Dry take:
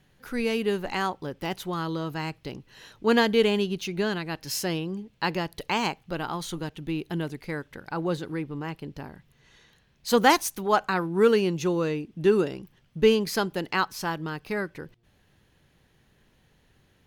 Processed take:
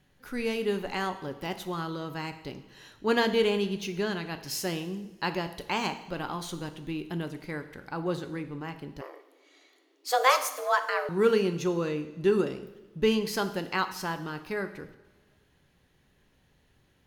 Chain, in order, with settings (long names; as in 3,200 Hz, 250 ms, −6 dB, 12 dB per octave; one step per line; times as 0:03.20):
coupled-rooms reverb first 0.81 s, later 2.4 s, from −18 dB, DRR 8 dB
0:09.01–0:11.09: frequency shifter +260 Hz
level −3.5 dB